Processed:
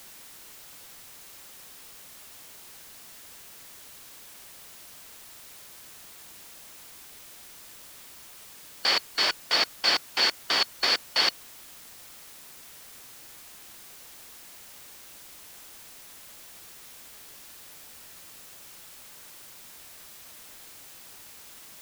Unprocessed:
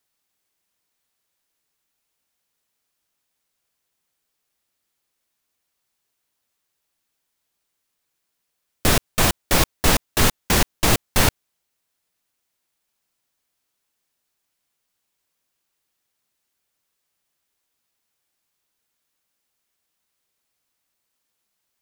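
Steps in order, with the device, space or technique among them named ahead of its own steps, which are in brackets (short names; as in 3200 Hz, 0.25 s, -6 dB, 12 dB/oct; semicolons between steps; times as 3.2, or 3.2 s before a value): split-band scrambled radio (four-band scrambler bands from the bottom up 4321; BPF 370–3000 Hz; white noise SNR 12 dB)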